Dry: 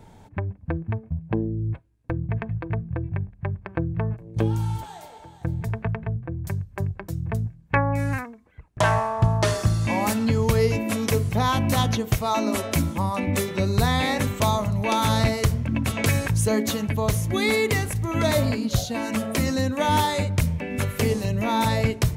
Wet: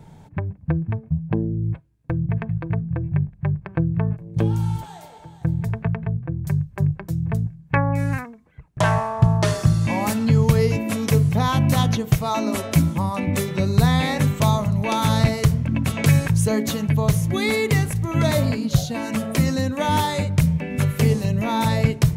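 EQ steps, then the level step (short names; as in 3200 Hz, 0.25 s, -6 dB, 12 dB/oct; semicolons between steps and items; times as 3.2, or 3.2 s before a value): bell 150 Hz +14 dB 0.36 oct; 0.0 dB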